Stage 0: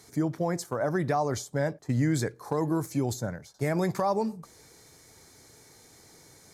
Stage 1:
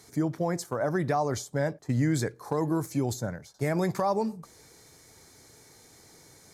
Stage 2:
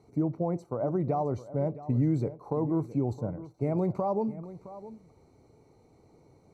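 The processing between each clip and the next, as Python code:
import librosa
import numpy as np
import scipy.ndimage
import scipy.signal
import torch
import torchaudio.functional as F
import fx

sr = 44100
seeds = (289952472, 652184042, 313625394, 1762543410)

y1 = x
y2 = scipy.signal.lfilter(np.full(26, 1.0 / 26), 1.0, y1)
y2 = y2 + 10.0 ** (-15.5 / 20.0) * np.pad(y2, (int(665 * sr / 1000.0), 0))[:len(y2)]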